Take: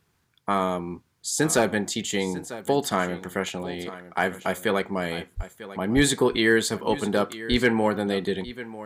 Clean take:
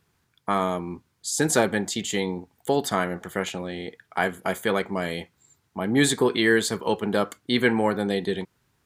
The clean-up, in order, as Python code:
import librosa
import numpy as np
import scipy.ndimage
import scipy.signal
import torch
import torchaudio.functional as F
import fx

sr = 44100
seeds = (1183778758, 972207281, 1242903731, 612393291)

y = fx.fix_declip(x, sr, threshold_db=-9.0)
y = fx.fix_deplosive(y, sr, at_s=(5.36, 5.95, 7.5))
y = fx.fix_echo_inverse(y, sr, delay_ms=946, level_db=-15.5)